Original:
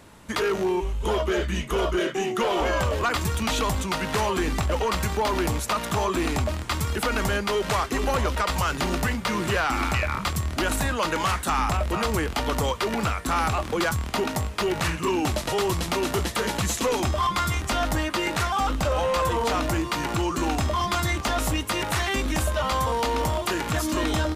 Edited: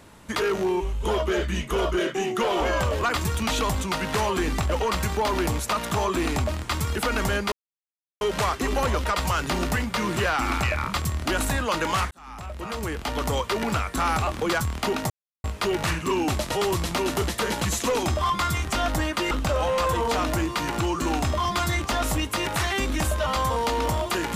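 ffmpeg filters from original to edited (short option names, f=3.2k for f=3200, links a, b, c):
-filter_complex "[0:a]asplit=5[a][b][c][d][e];[a]atrim=end=7.52,asetpts=PTS-STARTPTS,afade=t=out:st=7.516:d=0.004:c=hsin,apad=pad_dur=0.69[f];[b]atrim=start=7.52:end=11.42,asetpts=PTS-STARTPTS,afade=t=in:d=0.004:c=hsin,afade=t=out:st=3.896:d=0.004:c=hsin[g];[c]atrim=start=11.42:end=14.41,asetpts=PTS-STARTPTS,afade=t=in:d=1.32,afade=t=out:st=2.986:d=0.004:c=hsin,apad=pad_dur=0.34[h];[d]atrim=start=14.41:end=18.282,asetpts=PTS-STARTPTS,afade=t=in:d=0.004:c=hsin[i];[e]atrim=start=18.668[j];[f][g][h][i]concat=n=4:v=0:a=1[k];[k][j]acrossfade=d=0.004:c1=hsin:c2=hsin"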